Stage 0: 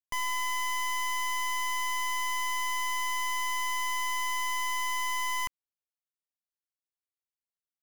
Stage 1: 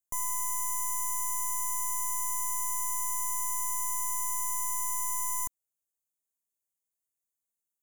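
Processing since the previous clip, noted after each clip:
drawn EQ curve 640 Hz 0 dB, 1,400 Hz −9 dB, 4,400 Hz −30 dB, 6,500 Hz +9 dB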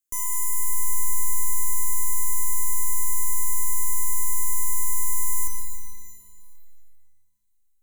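phaser with its sweep stopped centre 320 Hz, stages 4
reverb with rising layers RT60 2.1 s, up +12 semitones, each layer −8 dB, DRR 3.5 dB
level +4.5 dB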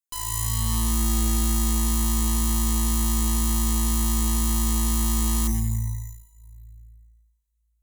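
frequency shifter −56 Hz
harmonic generator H 8 −8 dB, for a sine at −7.5 dBFS
level −8 dB

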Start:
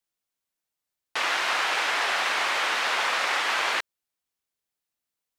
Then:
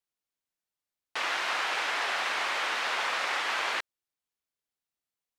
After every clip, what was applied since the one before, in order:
high-shelf EQ 8,100 Hz −4 dB
level −4.5 dB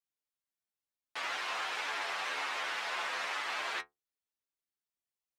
stiff-string resonator 70 Hz, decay 0.21 s, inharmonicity 0.002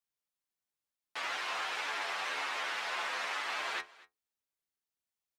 single-tap delay 241 ms −21.5 dB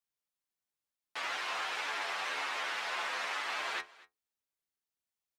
no processing that can be heard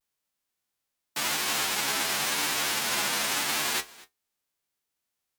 spectral envelope flattened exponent 0.3
pitch vibrato 0.88 Hz 69 cents
level +8.5 dB

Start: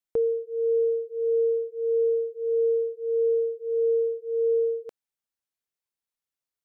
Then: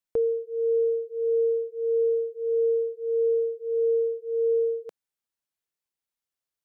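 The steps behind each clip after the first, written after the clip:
dynamic equaliser 170 Hz, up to −6 dB, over −51 dBFS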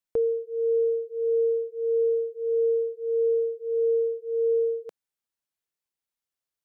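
no processing that can be heard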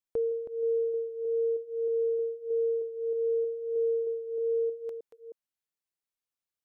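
delay that plays each chunk backwards 313 ms, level −10.5 dB
level −5 dB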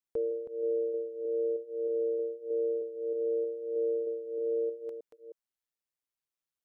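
amplitude modulation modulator 120 Hz, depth 35%

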